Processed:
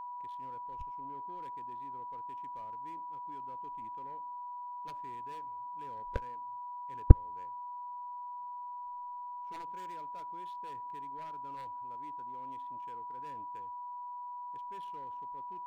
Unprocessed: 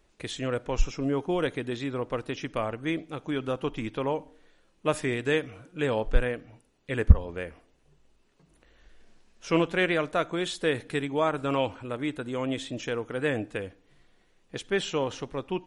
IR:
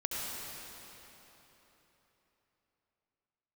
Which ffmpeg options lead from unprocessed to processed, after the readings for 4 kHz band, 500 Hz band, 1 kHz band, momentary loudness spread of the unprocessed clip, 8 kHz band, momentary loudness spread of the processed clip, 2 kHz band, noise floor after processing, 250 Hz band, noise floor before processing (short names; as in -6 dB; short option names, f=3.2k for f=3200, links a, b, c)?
under -25 dB, -21.5 dB, -0.5 dB, 10 LU, under -25 dB, 1 LU, -25.5 dB, -43 dBFS, -15.5 dB, -66 dBFS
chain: -af "adynamicsmooth=sensitivity=7:basefreq=970,aeval=exprs='0.75*(cos(1*acos(clip(val(0)/0.75,-1,1)))-cos(1*PI/2))+0.266*(cos(3*acos(clip(val(0)/0.75,-1,1)))-cos(3*PI/2))':c=same,aeval=exprs='val(0)+0.0112*sin(2*PI*980*n/s)':c=same,volume=-1dB"